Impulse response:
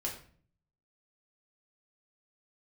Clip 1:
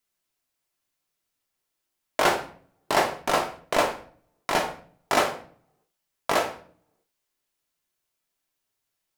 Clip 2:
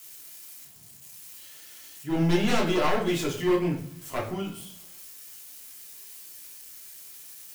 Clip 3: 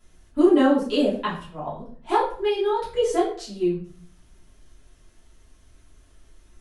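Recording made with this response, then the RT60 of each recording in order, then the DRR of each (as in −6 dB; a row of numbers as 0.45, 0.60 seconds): 2; 0.50, 0.50, 0.50 seconds; 3.5, −3.0, −10.5 decibels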